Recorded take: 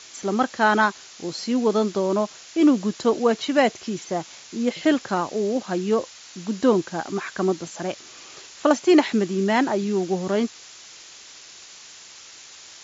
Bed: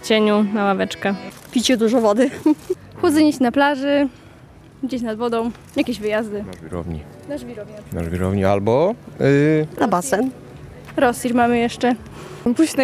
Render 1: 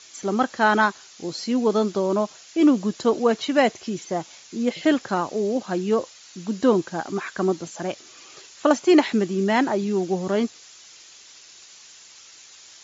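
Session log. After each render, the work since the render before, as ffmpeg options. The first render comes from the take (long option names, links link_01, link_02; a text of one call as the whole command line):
ffmpeg -i in.wav -af "afftdn=noise_reduction=6:noise_floor=-45" out.wav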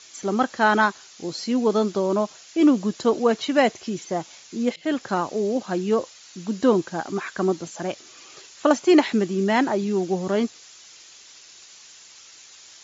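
ffmpeg -i in.wav -filter_complex "[0:a]asplit=2[link_01][link_02];[link_01]atrim=end=4.76,asetpts=PTS-STARTPTS,afade=type=out:start_time=4.756:duration=0.004:curve=hsin:silence=0.0749894[link_03];[link_02]atrim=start=4.76,asetpts=PTS-STARTPTS,afade=type=in:duration=0.42:curve=qsin:silence=0.0749894[link_04];[link_03][link_04]concat=n=2:v=0:a=1" out.wav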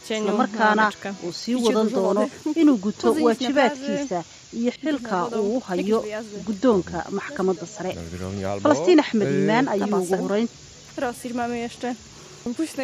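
ffmpeg -i in.wav -i bed.wav -filter_complex "[1:a]volume=-10.5dB[link_01];[0:a][link_01]amix=inputs=2:normalize=0" out.wav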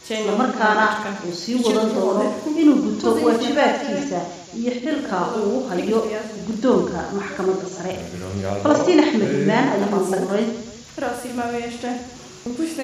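ffmpeg -i in.wav -af "aecho=1:1:40|92|159.6|247.5|361.7:0.631|0.398|0.251|0.158|0.1" out.wav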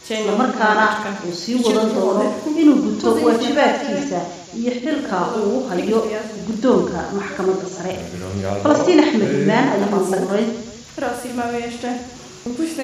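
ffmpeg -i in.wav -af "volume=2dB,alimiter=limit=-2dB:level=0:latency=1" out.wav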